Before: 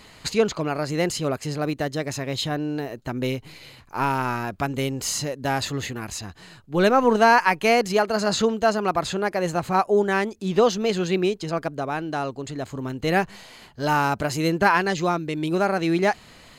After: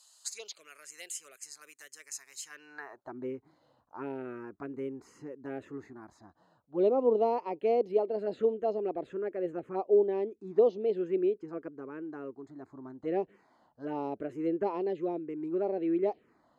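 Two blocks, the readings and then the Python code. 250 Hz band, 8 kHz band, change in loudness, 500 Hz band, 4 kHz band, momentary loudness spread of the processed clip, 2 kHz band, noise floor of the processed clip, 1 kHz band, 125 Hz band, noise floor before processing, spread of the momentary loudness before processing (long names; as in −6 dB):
−10.5 dB, below −10 dB, −9.0 dB, −6.5 dB, below −20 dB, 20 LU, −25.0 dB, −69 dBFS, −16.5 dB, −21.5 dB, −49 dBFS, 11 LU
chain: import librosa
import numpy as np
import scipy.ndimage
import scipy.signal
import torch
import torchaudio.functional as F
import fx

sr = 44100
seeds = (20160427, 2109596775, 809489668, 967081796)

y = fx.low_shelf_res(x, sr, hz=300.0, db=-11.5, q=1.5)
y = fx.env_phaser(y, sr, low_hz=360.0, high_hz=1600.0, full_db=-15.5)
y = fx.filter_sweep_bandpass(y, sr, from_hz=7800.0, to_hz=280.0, start_s=2.42, end_s=3.18, q=1.6)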